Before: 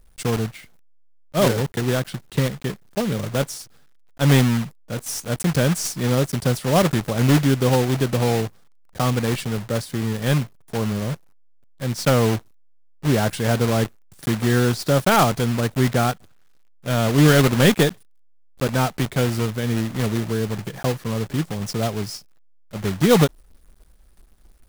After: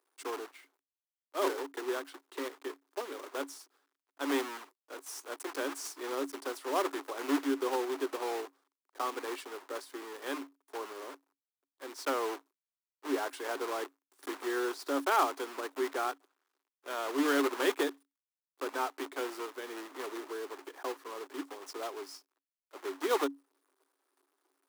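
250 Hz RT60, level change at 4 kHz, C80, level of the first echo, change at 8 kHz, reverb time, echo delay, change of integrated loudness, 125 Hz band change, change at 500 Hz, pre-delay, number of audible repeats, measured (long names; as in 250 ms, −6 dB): no reverb audible, −14.5 dB, no reverb audible, no echo audible, −15.5 dB, no reverb audible, no echo audible, −14.5 dB, below −40 dB, −12.5 dB, no reverb audible, no echo audible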